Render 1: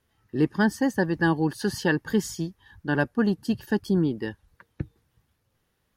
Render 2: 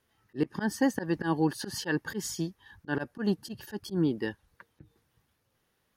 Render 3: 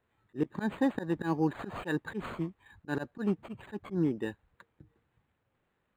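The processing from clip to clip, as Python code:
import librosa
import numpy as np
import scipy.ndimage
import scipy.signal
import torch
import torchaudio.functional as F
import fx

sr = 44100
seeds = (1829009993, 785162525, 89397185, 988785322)

y1 = fx.low_shelf(x, sr, hz=130.0, db=-9.0)
y1 = fx.notch(y1, sr, hz=7500.0, q=28.0)
y1 = fx.auto_swell(y1, sr, attack_ms=120.0)
y2 = np.interp(np.arange(len(y1)), np.arange(len(y1))[::8], y1[::8])
y2 = y2 * 10.0 ** (-2.0 / 20.0)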